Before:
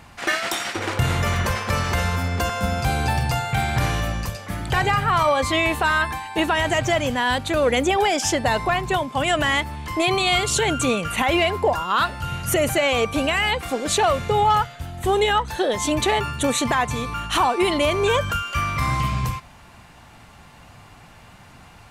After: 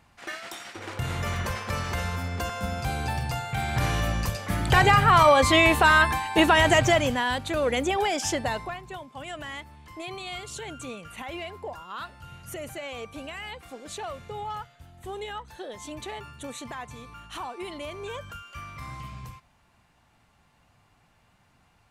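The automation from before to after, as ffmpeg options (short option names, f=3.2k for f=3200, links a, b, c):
-af "volume=2dB,afade=t=in:st=0.71:d=0.58:silence=0.473151,afade=t=in:st=3.55:d=1.12:silence=0.334965,afade=t=out:st=6.73:d=0.57:silence=0.398107,afade=t=out:st=8.38:d=0.4:silence=0.281838"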